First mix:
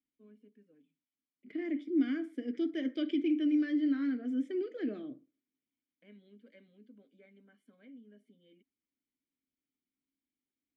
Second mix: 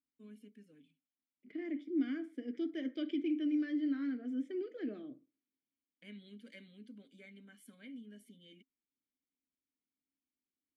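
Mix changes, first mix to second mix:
first voice: remove band-pass filter 560 Hz, Q 0.73; second voice -4.5 dB

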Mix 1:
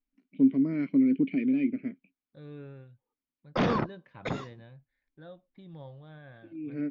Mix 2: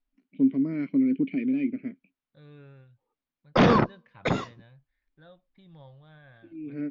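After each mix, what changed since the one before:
second voice: add peaking EQ 320 Hz -8 dB 2.2 oct; background +7.5 dB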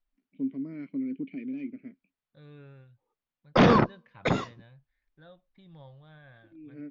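first voice -9.5 dB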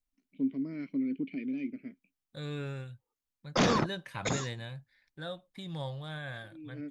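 second voice +11.5 dB; background -8.5 dB; master: remove distance through air 280 m

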